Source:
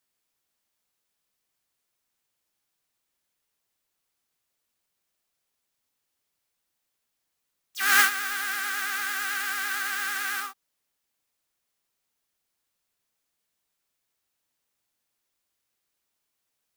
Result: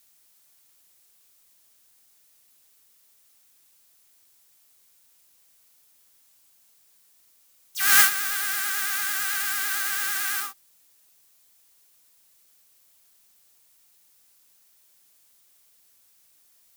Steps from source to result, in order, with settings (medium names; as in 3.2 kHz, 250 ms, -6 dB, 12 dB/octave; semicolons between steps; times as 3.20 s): added noise white -68 dBFS; treble shelf 4.6 kHz +11 dB; trim -2 dB